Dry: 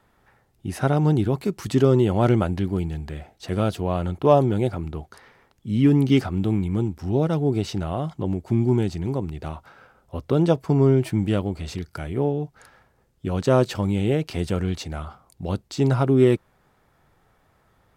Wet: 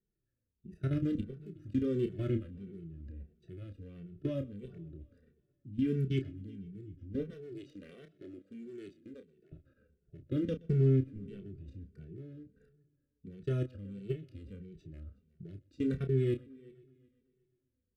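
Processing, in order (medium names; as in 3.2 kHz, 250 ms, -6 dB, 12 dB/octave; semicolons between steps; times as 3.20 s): local Wiener filter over 41 samples; 7.30–9.52 s: high-pass 460 Hz 12 dB/octave; dynamic bell 7.6 kHz, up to -5 dB, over -48 dBFS, Q 0.78; level held to a coarse grid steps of 20 dB; peak limiter -16 dBFS, peak gain reduction 6.5 dB; Butterworth band-stop 870 Hz, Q 0.73; doubling 30 ms -8.5 dB; multi-head delay 124 ms, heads first and third, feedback 41%, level -24 dB; endless flanger 2.2 ms -1.5 Hz; trim -3 dB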